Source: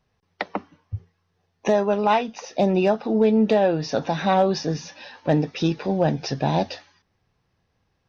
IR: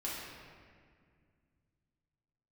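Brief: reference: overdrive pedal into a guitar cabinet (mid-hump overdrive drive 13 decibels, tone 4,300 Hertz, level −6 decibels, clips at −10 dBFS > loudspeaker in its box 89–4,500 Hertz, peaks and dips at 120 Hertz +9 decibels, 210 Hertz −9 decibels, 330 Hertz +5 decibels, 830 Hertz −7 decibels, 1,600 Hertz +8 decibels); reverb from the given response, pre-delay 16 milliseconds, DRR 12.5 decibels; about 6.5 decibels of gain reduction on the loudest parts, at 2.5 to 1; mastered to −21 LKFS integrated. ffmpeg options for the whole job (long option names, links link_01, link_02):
-filter_complex "[0:a]acompressor=threshold=-24dB:ratio=2.5,asplit=2[link_01][link_02];[1:a]atrim=start_sample=2205,adelay=16[link_03];[link_02][link_03]afir=irnorm=-1:irlink=0,volume=-15.5dB[link_04];[link_01][link_04]amix=inputs=2:normalize=0,asplit=2[link_05][link_06];[link_06]highpass=frequency=720:poles=1,volume=13dB,asoftclip=type=tanh:threshold=-10dB[link_07];[link_05][link_07]amix=inputs=2:normalize=0,lowpass=frequency=4300:poles=1,volume=-6dB,highpass=89,equalizer=frequency=120:width_type=q:width=4:gain=9,equalizer=frequency=210:width_type=q:width=4:gain=-9,equalizer=frequency=330:width_type=q:width=4:gain=5,equalizer=frequency=830:width_type=q:width=4:gain=-7,equalizer=frequency=1600:width_type=q:width=4:gain=8,lowpass=frequency=4500:width=0.5412,lowpass=frequency=4500:width=1.3066,volume=4.5dB"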